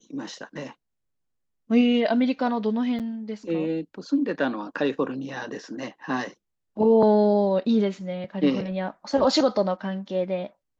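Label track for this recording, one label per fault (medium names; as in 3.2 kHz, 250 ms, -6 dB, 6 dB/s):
2.990000	3.000000	dropout 7.6 ms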